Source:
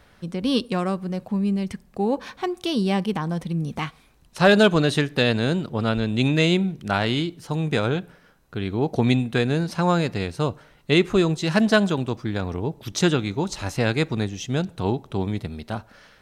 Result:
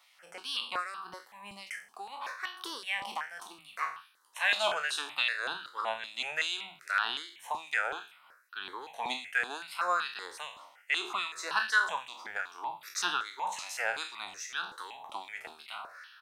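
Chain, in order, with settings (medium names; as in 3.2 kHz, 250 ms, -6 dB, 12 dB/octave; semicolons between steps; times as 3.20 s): spectral sustain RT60 0.43 s; LFO high-pass sine 2.5 Hz 870–2000 Hz; bands offset in time highs, lows 40 ms, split 170 Hz; in parallel at -3 dB: compression, threshold -30 dBFS, peak gain reduction 17 dB; on the sum: stepped phaser 5.3 Hz 430–2100 Hz; trim -7.5 dB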